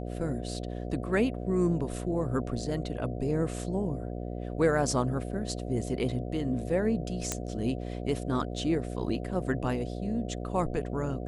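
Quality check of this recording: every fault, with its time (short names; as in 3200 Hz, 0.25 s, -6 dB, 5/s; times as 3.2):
buzz 60 Hz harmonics 12 -36 dBFS
7.32 pop -13 dBFS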